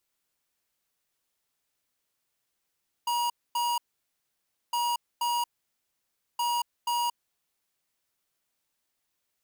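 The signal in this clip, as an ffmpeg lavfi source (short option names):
-f lavfi -i "aevalsrc='0.0422*(2*lt(mod(955*t,1),0.5)-1)*clip(min(mod(mod(t,1.66),0.48),0.23-mod(mod(t,1.66),0.48))/0.005,0,1)*lt(mod(t,1.66),0.96)':d=4.98:s=44100"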